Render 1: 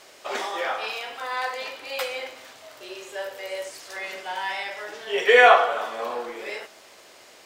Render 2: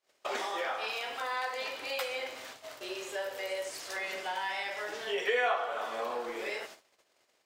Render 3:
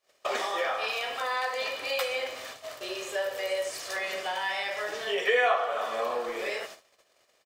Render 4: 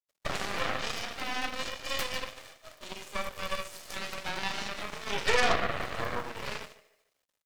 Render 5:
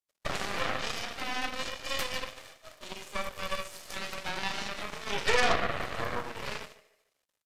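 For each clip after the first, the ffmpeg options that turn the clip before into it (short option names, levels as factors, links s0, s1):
-af "agate=range=0.0158:threshold=0.00501:ratio=16:detection=peak,acompressor=threshold=0.02:ratio=2.5"
-af "aecho=1:1:1.7:0.32,volume=1.58"
-af "aecho=1:1:148|296|444|592:0.282|0.0986|0.0345|0.0121,acrusher=bits=9:mix=0:aa=0.000001,aeval=exprs='0.251*(cos(1*acos(clip(val(0)/0.251,-1,1)))-cos(1*PI/2))+0.0631*(cos(3*acos(clip(val(0)/0.251,-1,1)))-cos(3*PI/2))+0.0224*(cos(5*acos(clip(val(0)/0.251,-1,1)))-cos(5*PI/2))+0.0501*(cos(6*acos(clip(val(0)/0.251,-1,1)))-cos(6*PI/2))+0.0178*(cos(7*acos(clip(val(0)/0.251,-1,1)))-cos(7*PI/2))':c=same"
-af "aresample=32000,aresample=44100"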